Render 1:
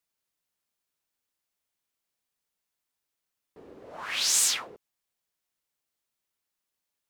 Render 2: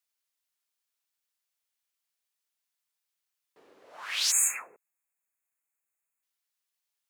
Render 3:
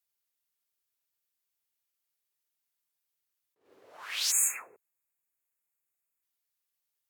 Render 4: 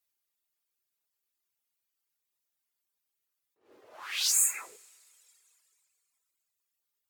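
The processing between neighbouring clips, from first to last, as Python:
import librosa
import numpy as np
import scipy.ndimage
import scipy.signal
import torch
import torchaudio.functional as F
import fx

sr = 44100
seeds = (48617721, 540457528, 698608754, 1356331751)

y1 = fx.spec_erase(x, sr, start_s=4.31, length_s=1.92, low_hz=2700.0, high_hz=6400.0)
y1 = fx.highpass(y1, sr, hz=1400.0, slope=6)
y2 = fx.graphic_eq_15(y1, sr, hz=(100, 400, 16000), db=(10, 4, 8))
y2 = fx.attack_slew(y2, sr, db_per_s=140.0)
y2 = y2 * librosa.db_to_amplitude(-3.5)
y3 = fx.rev_double_slope(y2, sr, seeds[0], early_s=0.42, late_s=2.7, knee_db=-18, drr_db=1.0)
y3 = fx.dereverb_blind(y3, sr, rt60_s=1.3)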